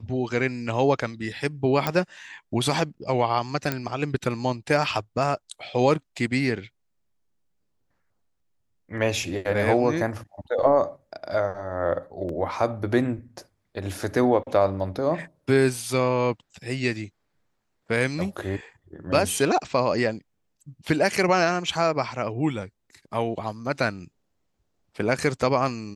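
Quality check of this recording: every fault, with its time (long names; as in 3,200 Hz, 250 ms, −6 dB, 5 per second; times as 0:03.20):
0:01.87: click −9 dBFS
0:03.72: click −10 dBFS
0:12.29: drop-out 2.6 ms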